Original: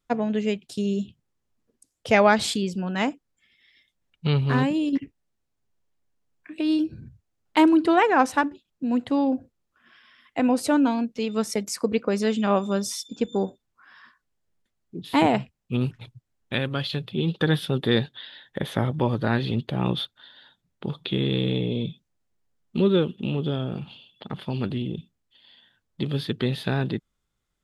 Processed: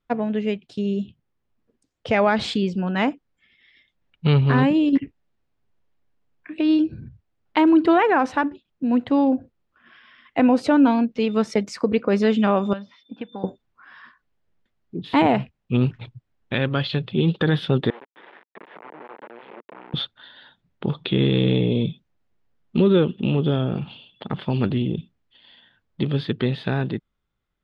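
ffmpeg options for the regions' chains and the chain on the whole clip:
ffmpeg -i in.wav -filter_complex "[0:a]asettb=1/sr,asplit=3[link_01][link_02][link_03];[link_01]atrim=end=12.734[link_04];[link_02]atrim=start=12.73:end=13.44,asetpts=PTS-STARTPTS,afade=type=in:duration=0.004:curve=qsin,afade=type=out:start_time=0.706:duration=0.004:curve=qsin,acrossover=split=840|2300[link_05][link_06][link_07];[link_05]acompressor=threshold=-37dB:ratio=4[link_08];[link_06]acompressor=threshold=-44dB:ratio=4[link_09];[link_07]acompressor=threshold=-46dB:ratio=4[link_10];[link_08][link_09][link_10]amix=inputs=3:normalize=0,highpass=frequency=110:width=0.5412,highpass=frequency=110:width=1.3066,equalizer=frequency=140:width_type=q:width=4:gain=-9,equalizer=frequency=390:width_type=q:width=4:gain=-10,equalizer=frequency=1300:width_type=q:width=4:gain=-4,equalizer=frequency=2300:width_type=q:width=4:gain=-3,lowpass=frequency=3300:width=0.5412,lowpass=frequency=3300:width=1.3066[link_11];[link_03]atrim=start=13.436[link_12];[link_04][link_11]acrossfade=duration=0.004:curve1=hsin:curve2=qsin[link_13];[link_13][link_12]acrossfade=duration=0.004:curve1=qsin:curve2=hsin,asettb=1/sr,asplit=3[link_14][link_15][link_16];[link_14]atrim=end=17.904[link_17];[link_15]atrim=start=17.9:end=19.94,asetpts=PTS-STARTPTS,afade=type=in:duration=0.004:curve=qsin,afade=type=out:start_time=2.036:duration=0.004:curve=qsin,acompressor=threshold=-38dB:ratio=6:attack=3.2:release=140:knee=1:detection=peak,acrusher=bits=4:dc=4:mix=0:aa=0.000001,highpass=frequency=260:width=0.5412,highpass=frequency=260:width=1.3066,equalizer=frequency=270:width_type=q:width=4:gain=-5,equalizer=frequency=450:width_type=q:width=4:gain=3,equalizer=frequency=920:width_type=q:width=4:gain=6,lowpass=frequency=2400:width=0.5412,lowpass=frequency=2400:width=1.3066[link_18];[link_16]atrim=start=19.936[link_19];[link_17][link_18]acrossfade=duration=0.004:curve1=hsin:curve2=qsin[link_20];[link_20][link_19]acrossfade=duration=0.004:curve1=qsin:curve2=hsin,lowpass=3300,dynaudnorm=framelen=100:gausssize=31:maxgain=5dB,alimiter=level_in=8.5dB:limit=-1dB:release=50:level=0:latency=1,volume=-7.5dB" out.wav

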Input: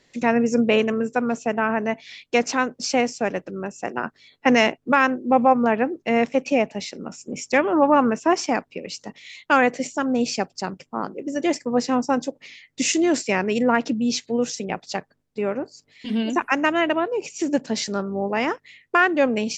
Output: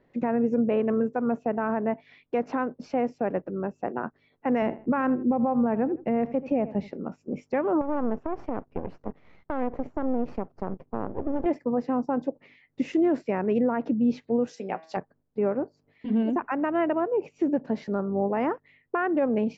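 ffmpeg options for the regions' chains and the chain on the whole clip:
ffmpeg -i in.wav -filter_complex "[0:a]asettb=1/sr,asplit=3[link_01][link_02][link_03];[link_01]atrim=end=4.624[link_04];[link_02]atrim=start=4.62:end=6.94,asetpts=PTS-STARTPTS,afade=type=in:duration=0.004:curve=qsin,afade=type=out:start_time=2.316:duration=0.004:curve=qsin,lowshelf=frequency=200:gain=10.5,asplit=2[link_05][link_06];[link_06]adelay=80,lowpass=frequency=4300:poles=1,volume=-20dB,asplit=2[link_07][link_08];[link_08]adelay=80,lowpass=frequency=4300:poles=1,volume=0.24[link_09];[link_05][link_07][link_09]amix=inputs=3:normalize=0,atrim=end_sample=102312[link_10];[link_03]atrim=start=6.936[link_11];[link_04][link_10]acrossfade=duration=0.004:curve1=hsin:curve2=qsin[link_12];[link_12][link_11]acrossfade=duration=0.004:curve1=qsin:curve2=hsin,asettb=1/sr,asplit=3[link_13][link_14][link_15];[link_13]atrim=end=7.814[link_16];[link_14]atrim=start=7.81:end=11.46,asetpts=PTS-STARTPTS,afade=type=in:duration=0.004:curve=qsin,afade=type=out:start_time=3.646:duration=0.004:curve=qsin,tiltshelf=frequency=1300:gain=6.5,acompressor=threshold=-19dB:ratio=10:attack=3.2:release=140:knee=1:detection=peak,aeval=exprs='max(val(0),0)':channel_layout=same[link_17];[link_15]atrim=start=11.456[link_18];[link_16][link_17]acrossfade=duration=0.004:curve1=hsin:curve2=qsin[link_19];[link_19][link_18]acrossfade=duration=0.004:curve1=qsin:curve2=hsin,asettb=1/sr,asplit=3[link_20][link_21][link_22];[link_20]atrim=end=14.474[link_23];[link_21]atrim=start=14.47:end=14.97,asetpts=PTS-STARTPTS,afade=type=in:duration=0.004:curve=qsin,afade=type=out:start_time=0.496:duration=0.004:curve=qsin,aemphasis=mode=production:type=riaa,asplit=2[link_24][link_25];[link_25]adelay=16,volume=-12dB[link_26];[link_24][link_26]amix=inputs=2:normalize=0,atrim=end_sample=22050,bandreject=frequency=160.9:width_type=h:width=4,bandreject=frequency=321.8:width_type=h:width=4,bandreject=frequency=482.7:width_type=h:width=4,bandreject=frequency=643.6:width_type=h:width=4,bandreject=frequency=804.5:width_type=h:width=4,bandreject=frequency=965.4:width_type=h:width=4,bandreject=frequency=1126.3:width_type=h:width=4,bandreject=frequency=1287.2:width_type=h:width=4,bandreject=frequency=1448.1:width_type=h:width=4,bandreject=frequency=1609:width_type=h:width=4,bandreject=frequency=1769.9:width_type=h:width=4,bandreject=frequency=1930.8:width_type=h:width=4,bandreject=frequency=2091.7:width_type=h:width=4,bandreject=frequency=2252.6:width_type=h:width=4,bandreject=frequency=2413.5:width_type=h:width=4,bandreject=frequency=2574.4:width_type=h:width=4,bandreject=frequency=2735.3:width_type=h:width=4,bandreject=frequency=2896.2:width_type=h:width=4,bandreject=frequency=3057.1:width_type=h:width=4,bandreject=frequency=3218:width_type=h:width=4,bandreject=frequency=3378.9:width_type=h:width=4,bandreject=frequency=3539.8:width_type=h:width=4,bandreject=frequency=3700.7:width_type=h:width=4,bandreject=frequency=3861.6:width_type=h:width=4,bandreject=frequency=4022.5:width_type=h:width=4,bandreject=frequency=4183.4:width_type=h:width=4,bandreject=frequency=4344.3:width_type=h:width=4,bandreject=frequency=4505.2:width_type=h:width=4,bandreject=frequency=4666.1:width_type=h:width=4,bandreject=frequency=4827:width_type=h:width=4,bandreject=frequency=4987.9:width_type=h:width=4,bandreject=frequency=5148.8:width_type=h:width=4,bandreject=frequency=5309.7:width_type=h:width=4[link_27];[link_22]atrim=start=14.966[link_28];[link_23][link_27]acrossfade=duration=0.004:curve1=hsin:curve2=qsin[link_29];[link_29][link_28]acrossfade=duration=0.004:curve1=qsin:curve2=hsin,lowpass=1100,alimiter=limit=-16dB:level=0:latency=1:release=121" out.wav

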